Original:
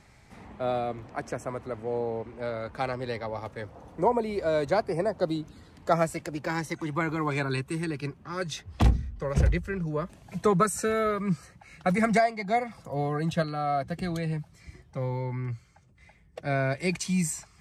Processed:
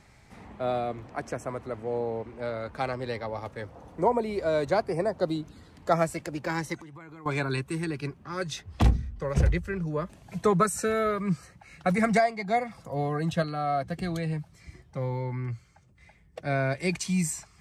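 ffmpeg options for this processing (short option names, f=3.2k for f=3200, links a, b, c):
-filter_complex "[0:a]asettb=1/sr,asplit=3[a][b][c];[a]atrim=end=6.754[d];[b]atrim=start=6.75:end=7.26,asetpts=PTS-STARTPTS,afade=t=in:d=0.004:c=qsin,afade=t=out:st=0.506:d=0.004:c=qsin,acompressor=threshold=-44dB:ratio=6:attack=3.2:release=140:knee=1:detection=peak[e];[c]atrim=start=7.256[f];[d][e]acrossfade=d=0.004:c1=hsin:c2=qsin[g];[g][f]acrossfade=d=0.004:c1=qsin:c2=hsin"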